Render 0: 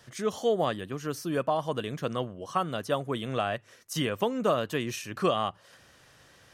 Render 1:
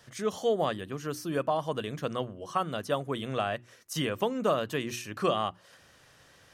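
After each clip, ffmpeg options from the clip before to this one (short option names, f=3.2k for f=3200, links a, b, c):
-af "bandreject=f=60:t=h:w=6,bandreject=f=120:t=h:w=6,bandreject=f=180:t=h:w=6,bandreject=f=240:t=h:w=6,bandreject=f=300:t=h:w=6,bandreject=f=360:t=h:w=6,volume=-1dB"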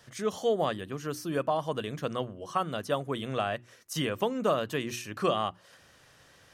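-af anull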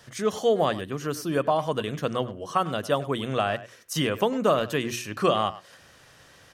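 -filter_complex "[0:a]asplit=2[a][b];[b]adelay=100,highpass=300,lowpass=3.4k,asoftclip=type=hard:threshold=-23dB,volume=-15dB[c];[a][c]amix=inputs=2:normalize=0,volume=5dB"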